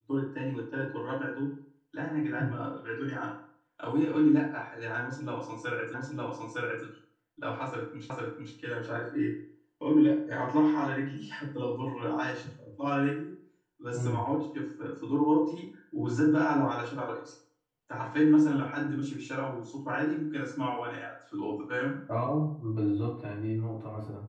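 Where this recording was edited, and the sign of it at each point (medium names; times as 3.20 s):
5.94 s: repeat of the last 0.91 s
8.10 s: repeat of the last 0.45 s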